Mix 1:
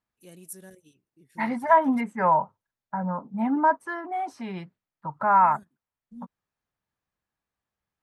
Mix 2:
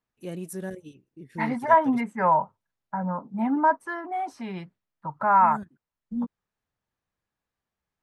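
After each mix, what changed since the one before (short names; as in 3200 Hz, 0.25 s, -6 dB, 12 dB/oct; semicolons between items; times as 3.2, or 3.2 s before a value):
first voice: remove pre-emphasis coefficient 0.8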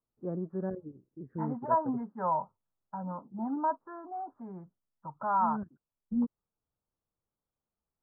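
second voice -9.0 dB; master: add steep low-pass 1400 Hz 48 dB/oct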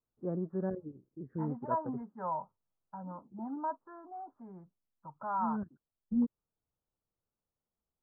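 second voice -6.0 dB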